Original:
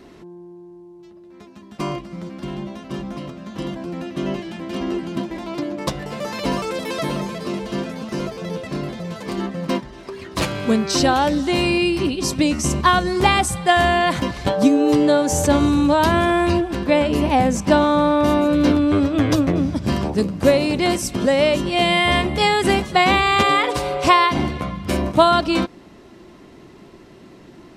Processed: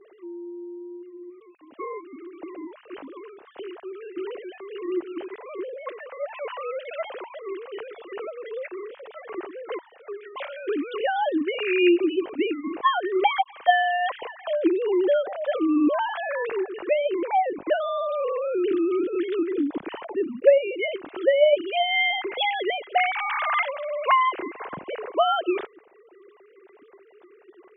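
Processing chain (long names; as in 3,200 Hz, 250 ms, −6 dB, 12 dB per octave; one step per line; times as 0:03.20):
three sine waves on the formant tracks
dynamic equaliser 900 Hz, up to −3 dB, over −27 dBFS, Q 0.91
level −5 dB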